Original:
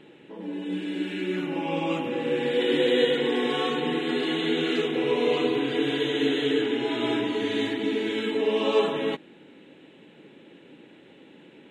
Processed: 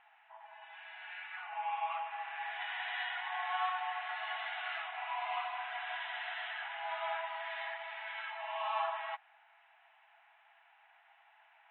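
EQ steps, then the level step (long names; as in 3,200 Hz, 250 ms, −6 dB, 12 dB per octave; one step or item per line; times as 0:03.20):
linear-phase brick-wall high-pass 650 Hz
low-pass filter 2,300 Hz 12 dB per octave
high-frequency loss of the air 400 metres
0.0 dB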